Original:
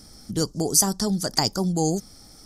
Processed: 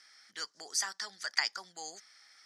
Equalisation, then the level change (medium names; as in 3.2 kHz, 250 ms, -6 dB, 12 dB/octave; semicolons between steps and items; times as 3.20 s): ladder band-pass 2.1 kHz, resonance 55%; +9.0 dB